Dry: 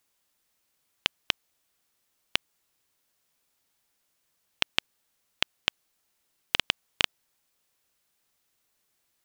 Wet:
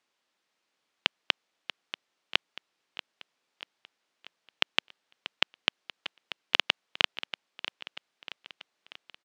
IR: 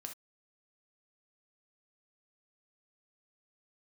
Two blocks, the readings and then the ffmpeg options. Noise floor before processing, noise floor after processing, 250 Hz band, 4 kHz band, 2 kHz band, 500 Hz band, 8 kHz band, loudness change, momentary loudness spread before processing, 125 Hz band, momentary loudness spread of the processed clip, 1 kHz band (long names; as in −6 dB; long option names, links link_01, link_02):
−75 dBFS, −81 dBFS, −0.5 dB, +0.5 dB, +1.5 dB, +1.5 dB, −7.0 dB, −0.5 dB, 5 LU, −8.0 dB, 21 LU, +2.0 dB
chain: -af "highpass=230,lowpass=4300,aecho=1:1:637|1274|1911|2548|3185|3822:0.224|0.121|0.0653|0.0353|0.019|0.0103,volume=1.5dB"